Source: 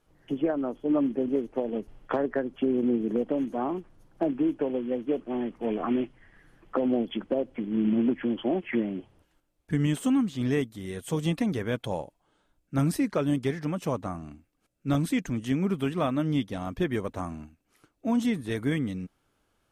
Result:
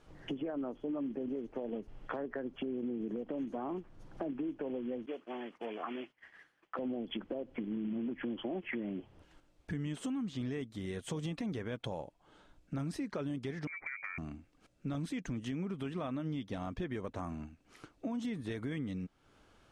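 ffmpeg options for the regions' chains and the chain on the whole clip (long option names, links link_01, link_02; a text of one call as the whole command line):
ffmpeg -i in.wav -filter_complex "[0:a]asettb=1/sr,asplit=3[link_01][link_02][link_03];[link_01]atrim=end=5.064[link_04];[link_02]atrim=start=5.06:end=6.79,asetpts=PTS-STARTPTS,afade=type=in:duration=0.004:curve=qsin,afade=type=out:start_time=1.726:duration=0.004:curve=qsin,highpass=frequency=1300:poles=1,agate=range=-33dB:threshold=-58dB:ratio=3:release=100:detection=peak[link_05];[link_03]atrim=start=6.786[link_06];[link_04][link_05]acrossfade=duration=0.004:curve1=hsin:curve2=qsin[link_07];[link_07][link_06]acrossfade=duration=0.004:curve1=qsin:curve2=hsin,asettb=1/sr,asplit=3[link_08][link_09][link_10];[link_08]atrim=end=13.674[link_11];[link_09]atrim=start=13.67:end=14.18,asetpts=PTS-STARTPTS,afade=type=in:duration=0.004:curve=qsin,afade=type=out:start_time=0.506:duration=0.004:curve=qsin,lowpass=frequency=2100:width_type=q:width=0.5098,lowpass=frequency=2100:width_type=q:width=0.6013,lowpass=frequency=2100:width_type=q:width=0.9,lowpass=frequency=2100:width_type=q:width=2.563,afreqshift=-2500,acompressor=threshold=-37dB:ratio=5:attack=3.2:release=140:knee=1:detection=peak[link_12];[link_10]atrim=start=14.176[link_13];[link_11][link_12]acrossfade=duration=0.004:curve1=hsin:curve2=qsin[link_14];[link_14][link_13]acrossfade=duration=0.004:curve1=qsin:curve2=hsin,lowpass=6600,alimiter=limit=-23.5dB:level=0:latency=1:release=88,acompressor=threshold=-51dB:ratio=2.5,volume=8dB" out.wav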